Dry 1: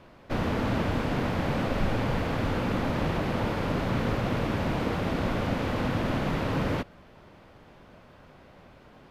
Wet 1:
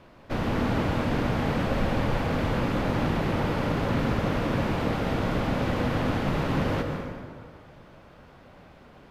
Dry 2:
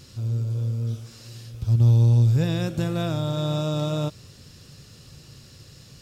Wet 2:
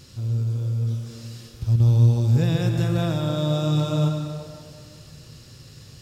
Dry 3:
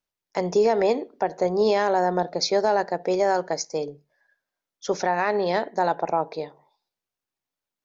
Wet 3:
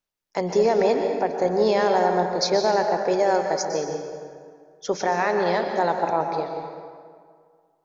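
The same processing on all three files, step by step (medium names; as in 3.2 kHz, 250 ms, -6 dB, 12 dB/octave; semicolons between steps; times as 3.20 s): plate-style reverb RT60 2 s, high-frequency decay 0.6×, pre-delay 110 ms, DRR 4 dB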